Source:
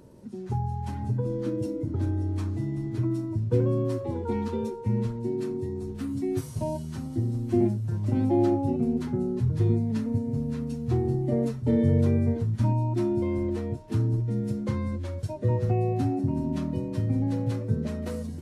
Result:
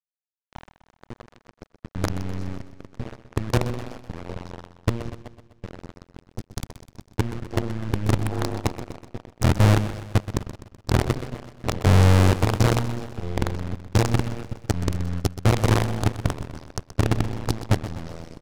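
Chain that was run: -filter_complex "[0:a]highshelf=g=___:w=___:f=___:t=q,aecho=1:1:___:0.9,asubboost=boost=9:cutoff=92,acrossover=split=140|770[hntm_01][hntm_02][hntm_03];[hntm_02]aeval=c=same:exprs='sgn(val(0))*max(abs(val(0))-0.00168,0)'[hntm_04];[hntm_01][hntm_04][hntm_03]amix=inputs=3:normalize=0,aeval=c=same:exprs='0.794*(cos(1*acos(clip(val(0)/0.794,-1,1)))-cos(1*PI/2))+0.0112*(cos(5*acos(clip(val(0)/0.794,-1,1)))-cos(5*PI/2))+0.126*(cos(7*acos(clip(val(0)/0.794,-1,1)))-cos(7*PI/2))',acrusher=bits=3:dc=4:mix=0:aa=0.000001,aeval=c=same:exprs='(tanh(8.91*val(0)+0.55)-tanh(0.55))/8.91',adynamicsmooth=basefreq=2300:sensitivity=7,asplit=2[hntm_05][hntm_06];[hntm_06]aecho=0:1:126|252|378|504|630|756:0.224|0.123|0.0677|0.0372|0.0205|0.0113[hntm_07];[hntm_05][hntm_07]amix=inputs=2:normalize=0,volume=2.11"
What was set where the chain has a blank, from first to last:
9, 3, 4000, 2.5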